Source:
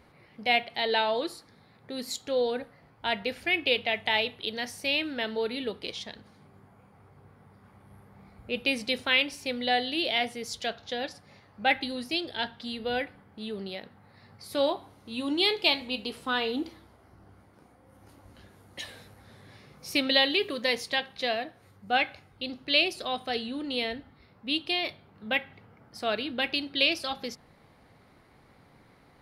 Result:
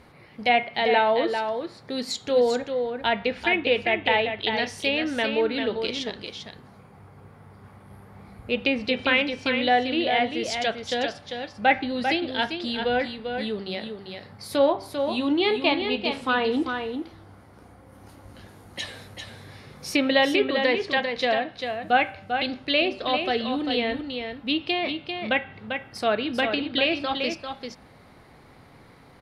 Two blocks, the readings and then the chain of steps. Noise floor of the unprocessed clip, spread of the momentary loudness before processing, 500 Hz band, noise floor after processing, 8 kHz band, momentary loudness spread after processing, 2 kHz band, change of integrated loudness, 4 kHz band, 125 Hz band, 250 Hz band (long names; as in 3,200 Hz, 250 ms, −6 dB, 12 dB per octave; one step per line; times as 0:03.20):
−59 dBFS, 15 LU, +7.5 dB, −51 dBFS, +2.5 dB, 13 LU, +4.0 dB, +4.0 dB, +0.5 dB, +7.5 dB, +7.5 dB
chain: treble cut that deepens with the level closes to 2,000 Hz, closed at −25 dBFS
hum removal 194.4 Hz, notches 19
on a send: single-tap delay 395 ms −6.5 dB
on the sum: level +6.5 dB